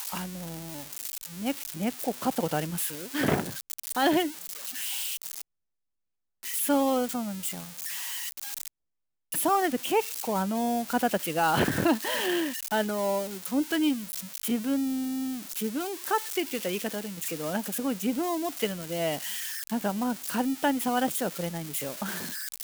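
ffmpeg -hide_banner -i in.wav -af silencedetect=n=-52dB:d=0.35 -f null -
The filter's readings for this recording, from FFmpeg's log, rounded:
silence_start: 5.41
silence_end: 6.43 | silence_duration: 1.02
silence_start: 8.68
silence_end: 9.32 | silence_duration: 0.64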